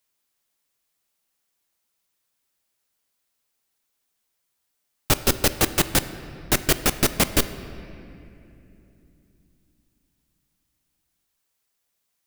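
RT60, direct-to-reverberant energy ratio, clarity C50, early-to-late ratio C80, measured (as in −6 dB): 2.8 s, 11.5 dB, 13.0 dB, 13.5 dB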